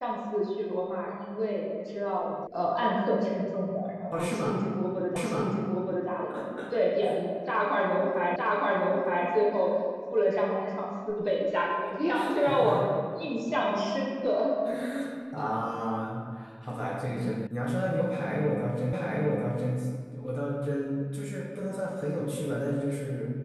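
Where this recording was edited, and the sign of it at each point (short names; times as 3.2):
2.47 sound cut off
5.16 repeat of the last 0.92 s
8.36 repeat of the last 0.91 s
17.47 sound cut off
18.93 repeat of the last 0.81 s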